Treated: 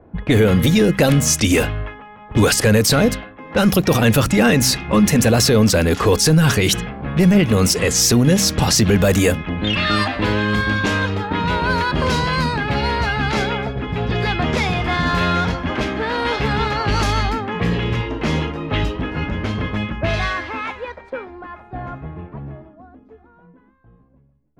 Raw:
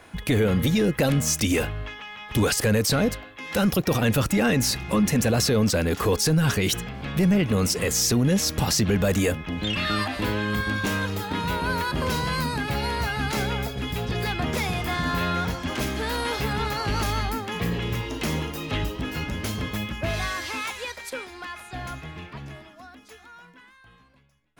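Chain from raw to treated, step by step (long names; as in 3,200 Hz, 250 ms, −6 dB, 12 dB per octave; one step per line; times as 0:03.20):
hum removal 64.97 Hz, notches 4
low-pass that shuts in the quiet parts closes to 450 Hz, open at −19 dBFS
level +7.5 dB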